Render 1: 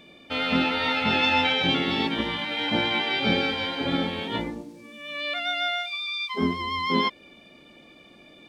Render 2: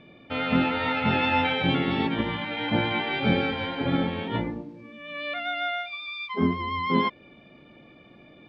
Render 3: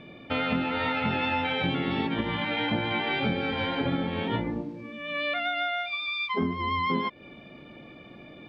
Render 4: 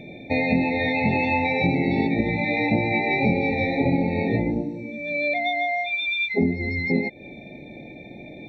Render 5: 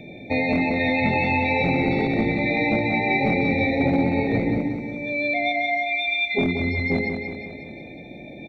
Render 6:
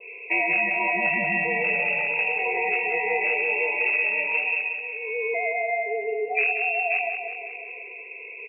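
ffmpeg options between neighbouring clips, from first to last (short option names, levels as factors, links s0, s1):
-af "lowpass=2400,equalizer=f=120:t=o:w=0.89:g=8.5"
-af "acompressor=threshold=0.0355:ratio=6,volume=1.68"
-af "afftfilt=real='re*eq(mod(floor(b*sr/1024/890),2),0)':imag='im*eq(mod(floor(b*sr/1024/890),2),0)':win_size=1024:overlap=0.75,volume=2.24"
-filter_complex "[0:a]acrossover=split=340|2300[s0][s1][s2];[s0]aeval=exprs='0.106*(abs(mod(val(0)/0.106+3,4)-2)-1)':c=same[s3];[s3][s1][s2]amix=inputs=3:normalize=0,aecho=1:1:182|364|546|728|910|1092|1274:0.501|0.276|0.152|0.0834|0.0459|0.0252|0.0139"
-af "adynamicequalizer=threshold=0.0178:dfrequency=450:dqfactor=0.79:tfrequency=450:tqfactor=0.79:attack=5:release=100:ratio=0.375:range=3.5:mode=cutabove:tftype=bell,lowpass=f=2400:t=q:w=0.5098,lowpass=f=2400:t=q:w=0.6013,lowpass=f=2400:t=q:w=0.9,lowpass=f=2400:t=q:w=2.563,afreqshift=-2800"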